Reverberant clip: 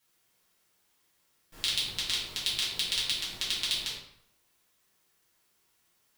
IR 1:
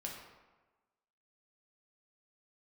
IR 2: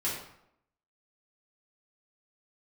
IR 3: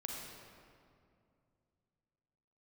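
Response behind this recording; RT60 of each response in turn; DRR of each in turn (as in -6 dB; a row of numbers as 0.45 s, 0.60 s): 2; 1.2 s, 0.75 s, 2.4 s; -1.5 dB, -8.5 dB, -1.0 dB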